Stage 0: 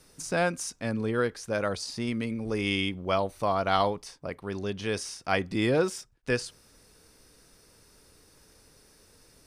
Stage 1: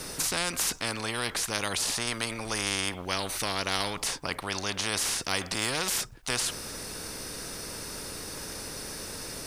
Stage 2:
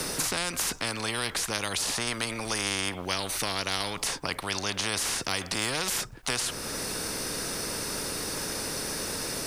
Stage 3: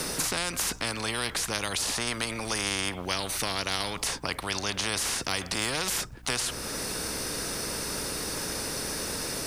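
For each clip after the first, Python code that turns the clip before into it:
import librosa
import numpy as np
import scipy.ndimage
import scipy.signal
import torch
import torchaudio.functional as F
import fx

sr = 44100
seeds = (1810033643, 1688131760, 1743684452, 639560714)

y1 = fx.spectral_comp(x, sr, ratio=4.0)
y2 = fx.band_squash(y1, sr, depth_pct=70)
y3 = fx.add_hum(y2, sr, base_hz=60, snr_db=19)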